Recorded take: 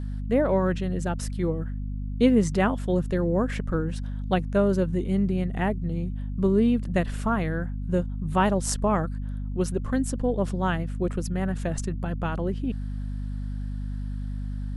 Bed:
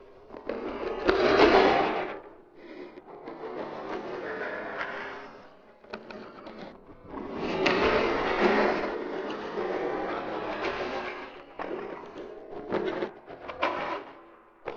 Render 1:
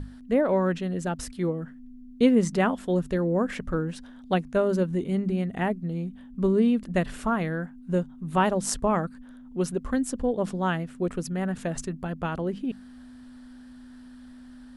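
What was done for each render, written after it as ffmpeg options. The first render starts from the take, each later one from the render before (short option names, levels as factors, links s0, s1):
-af "bandreject=f=50:t=h:w=6,bandreject=f=100:t=h:w=6,bandreject=f=150:t=h:w=6,bandreject=f=200:t=h:w=6"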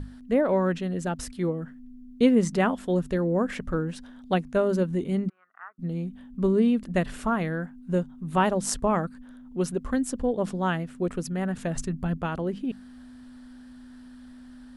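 -filter_complex "[0:a]asplit=3[s0][s1][s2];[s0]afade=t=out:st=5.28:d=0.02[s3];[s1]asuperpass=centerf=1300:order=4:qfactor=3.6,afade=t=in:st=5.28:d=0.02,afade=t=out:st=5.78:d=0.02[s4];[s2]afade=t=in:st=5.78:d=0.02[s5];[s3][s4][s5]amix=inputs=3:normalize=0,asettb=1/sr,asplit=3[s6][s7][s8];[s6]atrim=end=11.544[s9];[s7]atrim=start=11.54:end=12.18,asetpts=PTS-STARTPTS,afade=t=in:d=0.004:c=qsin,afade=t=out:st=0.636:d=0.004:c=qsin,asubboost=boost=11:cutoff=230[s10];[s8]atrim=start=12.176[s11];[s9][s10]acrossfade=d=0.004:c1=hsin:c2=qsin[s12];[s12][s11]acrossfade=d=0.004:c1=qsin:c2=hsin"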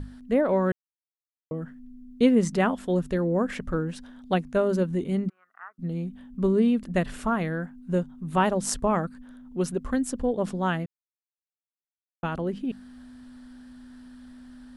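-filter_complex "[0:a]asplit=5[s0][s1][s2][s3][s4];[s0]atrim=end=0.72,asetpts=PTS-STARTPTS,afade=t=out:st=0.716:d=0.004:c=hsin[s5];[s1]atrim=start=0.72:end=1.51,asetpts=PTS-STARTPTS,volume=0[s6];[s2]atrim=start=1.51:end=10.86,asetpts=PTS-STARTPTS,afade=t=in:d=0.004:c=hsin,afade=t=out:st=9.346:d=0.004:c=hsin[s7];[s3]atrim=start=10.86:end=12.23,asetpts=PTS-STARTPTS,volume=0[s8];[s4]atrim=start=12.23,asetpts=PTS-STARTPTS,afade=t=in:d=0.004:c=hsin[s9];[s5][s6][s7][s8][s9]concat=n=5:v=0:a=1"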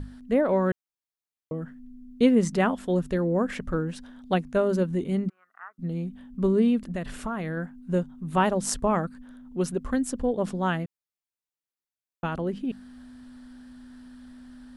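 -filter_complex "[0:a]asettb=1/sr,asplit=3[s0][s1][s2];[s0]atrim=end=6.844[s3];[s1]atrim=start=6.84:end=7.57,asetpts=PTS-STARTPTS,afade=t=in:d=0.004:c=qsin,afade=t=out:st=0.726:d=0.004:c=qsin,acompressor=threshold=0.0447:ratio=6:attack=3.2:release=140:knee=1:detection=peak[s4];[s2]atrim=start=7.566[s5];[s3][s4]acrossfade=d=0.004:c1=hsin:c2=qsin[s6];[s6][s5]acrossfade=d=0.004:c1=qsin:c2=hsin"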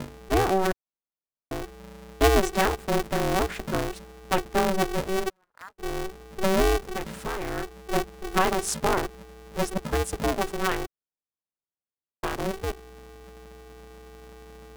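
-filter_complex "[0:a]acrossover=split=160|1200[s0][s1][s2];[s2]aeval=exprs='val(0)*gte(abs(val(0)),0.00531)':c=same[s3];[s0][s1][s3]amix=inputs=3:normalize=0,aeval=exprs='val(0)*sgn(sin(2*PI*190*n/s))':c=same"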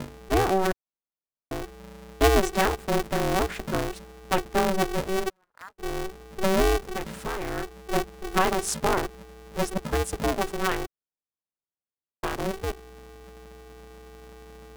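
-af anull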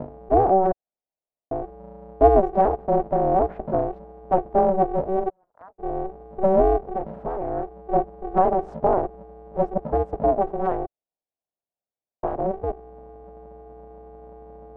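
-af "lowpass=f=690:t=q:w=3.4"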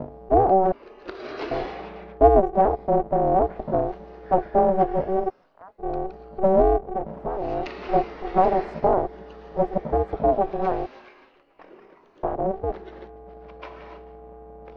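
-filter_complex "[1:a]volume=0.224[s0];[0:a][s0]amix=inputs=2:normalize=0"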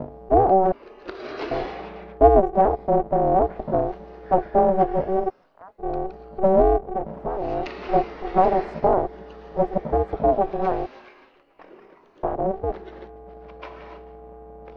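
-af "volume=1.12"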